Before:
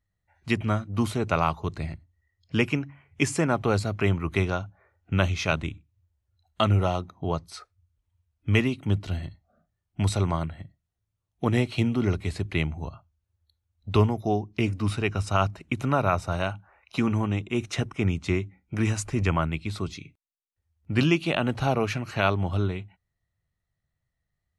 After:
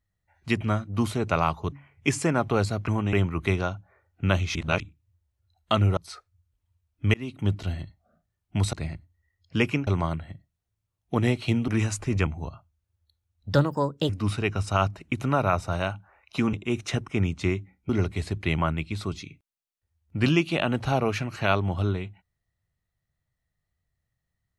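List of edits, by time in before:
0:01.72–0:02.86: move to 0:10.17
0:05.44–0:05.69: reverse
0:06.86–0:07.41: remove
0:08.58–0:08.98: fade in equal-power
0:11.98–0:12.67: swap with 0:18.74–0:19.33
0:13.93–0:14.69: play speed 135%
0:17.13–0:17.38: move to 0:04.02

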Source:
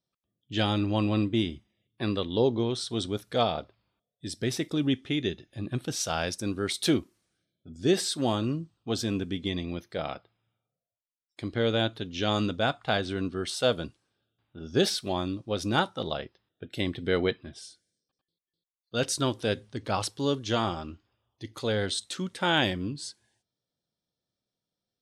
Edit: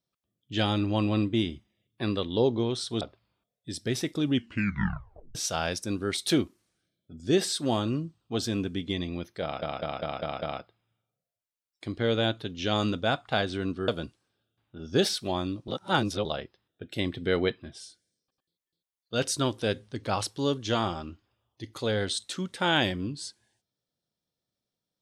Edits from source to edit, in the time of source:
0:03.01–0:03.57: remove
0:04.89: tape stop 1.02 s
0:09.98: stutter 0.20 s, 6 plays
0:13.44–0:13.69: remove
0:15.49–0:16.06: reverse

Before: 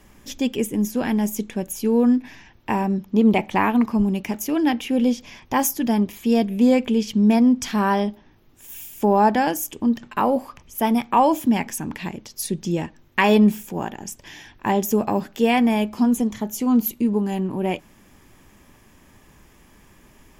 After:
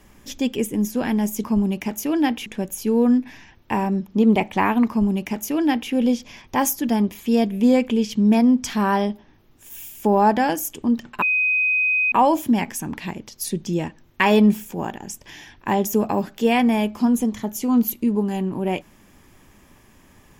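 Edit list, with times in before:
0:03.87–0:04.89: duplicate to 0:01.44
0:10.20–0:11.10: beep over 2,510 Hz −16.5 dBFS

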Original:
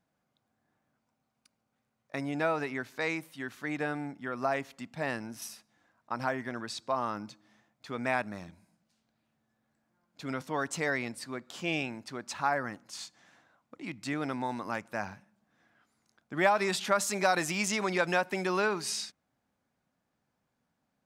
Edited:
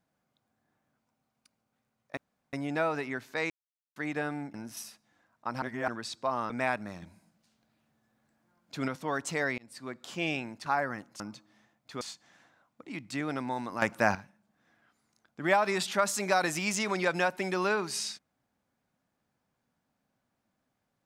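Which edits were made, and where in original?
0:02.17: splice in room tone 0.36 s
0:03.14–0:03.60: silence
0:04.18–0:05.19: remove
0:06.27–0:06.53: reverse
0:07.15–0:07.96: move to 0:12.94
0:08.48–0:10.34: clip gain +4 dB
0:11.04–0:11.51: fade in equal-power
0:12.12–0:12.40: remove
0:14.75–0:15.08: clip gain +9.5 dB

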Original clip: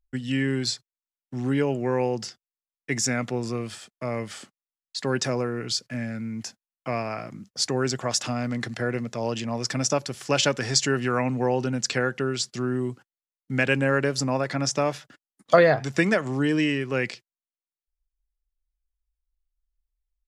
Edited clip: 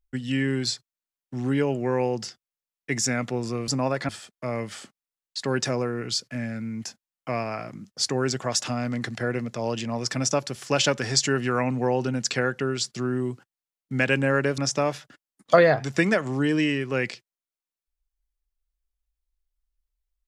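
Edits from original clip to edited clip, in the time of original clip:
0:14.17–0:14.58: move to 0:03.68

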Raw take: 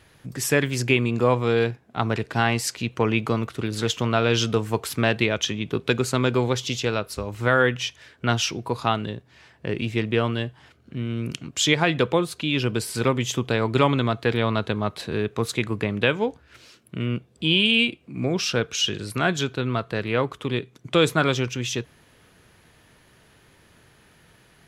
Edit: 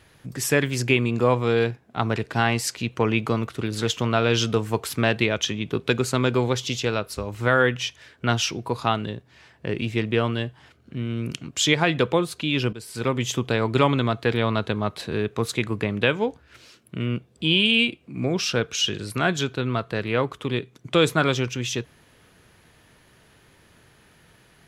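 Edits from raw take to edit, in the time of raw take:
0:12.73–0:13.23: fade in, from −16.5 dB

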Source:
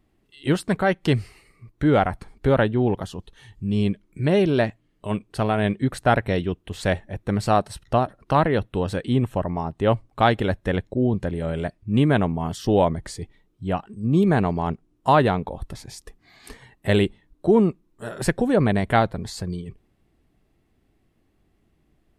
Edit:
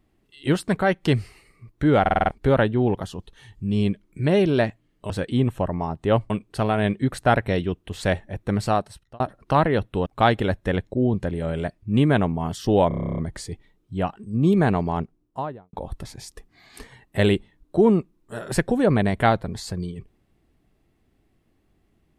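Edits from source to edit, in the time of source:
0:02.01: stutter in place 0.05 s, 6 plays
0:07.39–0:08.00: fade out
0:08.86–0:10.06: move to 0:05.10
0:12.88: stutter 0.03 s, 11 plays
0:14.55–0:15.43: fade out and dull

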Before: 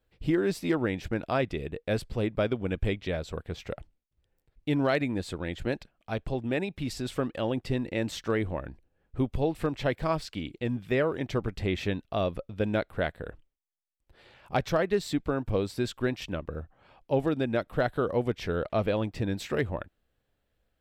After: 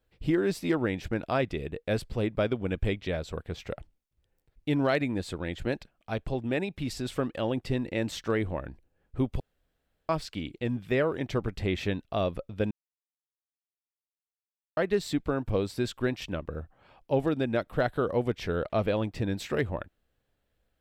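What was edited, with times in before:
0:09.40–0:10.09: fill with room tone
0:12.71–0:14.77: silence

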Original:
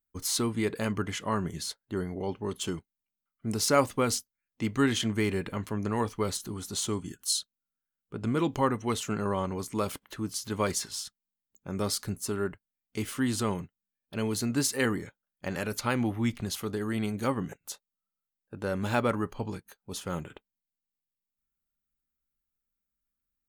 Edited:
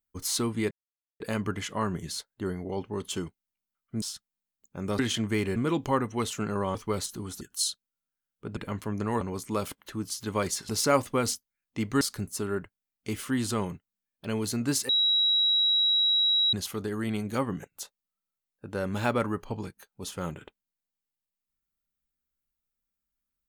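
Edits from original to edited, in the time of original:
0:00.71: splice in silence 0.49 s
0:03.53–0:04.85: swap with 0:10.93–0:11.90
0:05.42–0:06.06: swap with 0:08.26–0:09.45
0:06.72–0:07.10: remove
0:14.78–0:16.42: beep over 3,870 Hz −20.5 dBFS

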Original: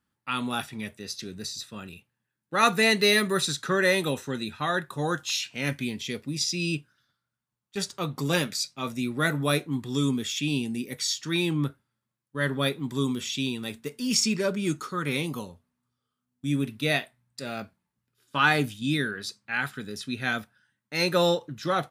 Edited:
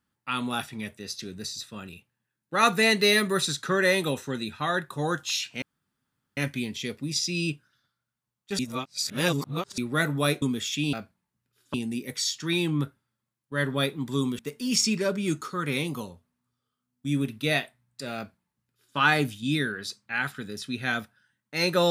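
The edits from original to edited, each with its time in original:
0:05.62: splice in room tone 0.75 s
0:07.84–0:09.03: reverse
0:09.67–0:10.06: remove
0:13.22–0:13.78: remove
0:17.55–0:18.36: duplicate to 0:10.57

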